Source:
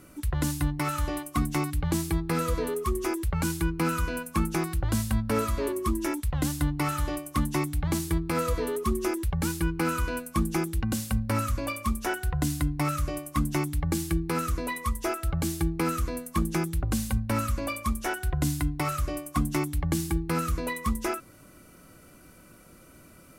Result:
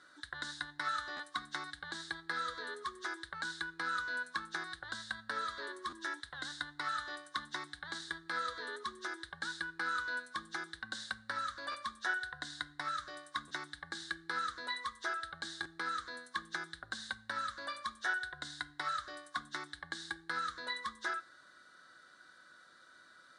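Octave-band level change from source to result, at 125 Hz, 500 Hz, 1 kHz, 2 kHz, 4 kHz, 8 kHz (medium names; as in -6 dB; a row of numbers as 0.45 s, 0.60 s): -32.5 dB, -19.0 dB, -6.5 dB, -0.5 dB, -1.5 dB, -16.5 dB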